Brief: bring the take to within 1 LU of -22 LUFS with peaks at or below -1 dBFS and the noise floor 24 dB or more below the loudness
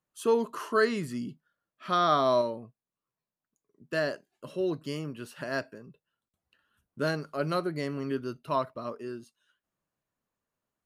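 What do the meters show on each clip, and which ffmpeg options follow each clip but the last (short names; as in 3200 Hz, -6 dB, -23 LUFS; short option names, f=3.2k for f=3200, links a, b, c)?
loudness -30.5 LUFS; peak -11.0 dBFS; loudness target -22.0 LUFS
-> -af "volume=8.5dB"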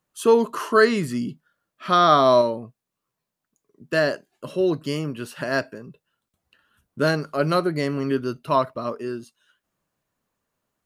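loudness -22.0 LUFS; peak -2.5 dBFS; noise floor -84 dBFS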